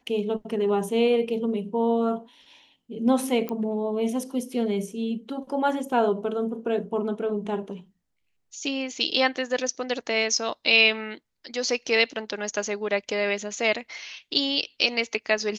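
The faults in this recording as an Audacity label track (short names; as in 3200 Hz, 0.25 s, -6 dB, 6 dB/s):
3.490000	3.490000	pop -17 dBFS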